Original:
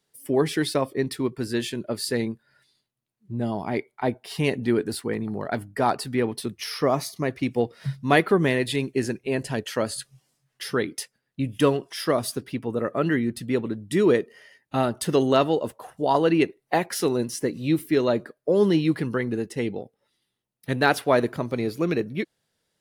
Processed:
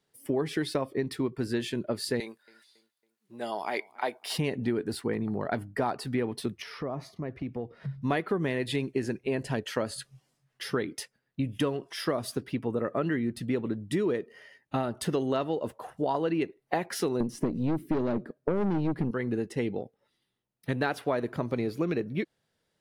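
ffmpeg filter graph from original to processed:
ffmpeg -i in.wav -filter_complex "[0:a]asettb=1/sr,asplit=3[link_01][link_02][link_03];[link_01]atrim=end=2.204[link_04];[link_02]atrim=start=2.2:end=4.38,asetpts=PTS-STARTPTS,afade=type=in:duration=0.004:curve=qsin,afade=type=out:start_time=2.176:duration=0.004:curve=qsin,highpass=560,highshelf=frequency=3100:gain=11.5,asplit=2[link_05][link_06];[link_06]adelay=276,lowpass=frequency=2600:poles=1,volume=-23.5dB,asplit=2[link_07][link_08];[link_08]adelay=276,lowpass=frequency=2600:poles=1,volume=0.43,asplit=2[link_09][link_10];[link_10]adelay=276,lowpass=frequency=2600:poles=1,volume=0.43[link_11];[link_05][link_07][link_09][link_11]amix=inputs=4:normalize=0,atrim=end_sample=96138[link_12];[link_03]atrim=start=4.376[link_13];[link_04][link_12]acrossfade=duration=0.004:curve1=hsin:curve2=qsin[link_14];[link_14][link_13]acrossfade=duration=0.004:curve1=qsin:curve2=hsin,asettb=1/sr,asplit=3[link_15][link_16][link_17];[link_15]atrim=end=6.624[link_18];[link_16]atrim=start=6.62:end=8.02,asetpts=PTS-STARTPTS,afade=type=in:duration=0.004:curve=qsin,afade=type=out:start_time=1.396:duration=0.004:curve=qsin,lowpass=frequency=1500:poles=1,lowshelf=frequency=150:gain=5.5,acompressor=threshold=-34dB:ratio=3:attack=3.2:release=140:knee=1:detection=peak[link_19];[link_17]atrim=start=8.016[link_20];[link_18][link_19]acrossfade=duration=0.004:curve1=hsin:curve2=qsin[link_21];[link_21][link_20]acrossfade=duration=0.004:curve1=qsin:curve2=hsin,asettb=1/sr,asplit=3[link_22][link_23][link_24];[link_22]atrim=end=17.204[link_25];[link_23]atrim=start=17.2:end=19.11,asetpts=PTS-STARTPTS,afade=type=in:duration=0.004:curve=qsin,afade=type=out:start_time=1.906:duration=0.004:curve=qsin,equalizer=frequency=200:width=0.57:gain=14.5,aeval=exprs='(tanh(4.47*val(0)+0.55)-tanh(0.55))/4.47':channel_layout=same[link_26];[link_24]atrim=start=19.106[link_27];[link_25][link_26]acrossfade=duration=0.004:curve1=hsin:curve2=qsin[link_28];[link_28][link_27]acrossfade=duration=0.004:curve1=qsin:curve2=hsin,highshelf=frequency=4300:gain=-8,acompressor=threshold=-25dB:ratio=6" out.wav

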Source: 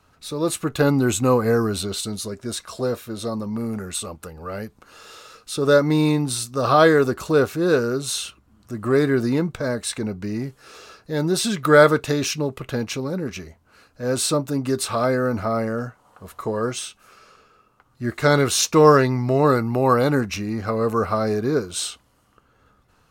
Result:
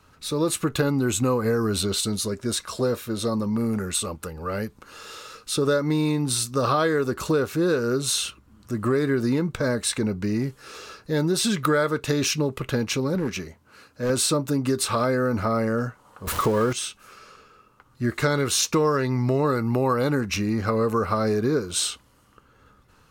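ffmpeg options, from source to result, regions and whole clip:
ffmpeg -i in.wav -filter_complex "[0:a]asettb=1/sr,asplit=3[link_01][link_02][link_03];[link_01]atrim=end=13.154[link_04];[link_02]atrim=start=13.15:end=14.1,asetpts=PTS-STARTPTS,afade=type=in:duration=0.004:curve=qsin,afade=type=out:start_time=0.946:duration=0.004:curve=qsin,highpass=93,asoftclip=type=hard:threshold=-22.5dB[link_05];[link_03]atrim=start=14.096[link_06];[link_04][link_05]acrossfade=duration=0.004:curve1=hsin:curve2=qsin[link_07];[link_07][link_06]acrossfade=duration=0.004:curve1=qsin:curve2=hsin,asettb=1/sr,asplit=3[link_08][link_09][link_10];[link_08]atrim=end=16.274[link_11];[link_09]atrim=start=16.27:end=16.73,asetpts=PTS-STARTPTS,afade=type=in:duration=0.004:curve=qsin,afade=type=out:start_time=0.456:duration=0.004:curve=qsin,aeval=exprs='val(0)+0.5*0.02*sgn(val(0))':channel_layout=same,acontrast=57[link_12];[link_10]atrim=start=16.726[link_13];[link_11][link_12]acrossfade=duration=0.004:curve1=hsin:curve2=qsin[link_14];[link_14][link_13]acrossfade=duration=0.004:curve1=qsin:curve2=hsin,equalizer=frequency=700:width_type=o:width=0.28:gain=-7,acompressor=threshold=-22dB:ratio=6,volume=3dB" out.wav

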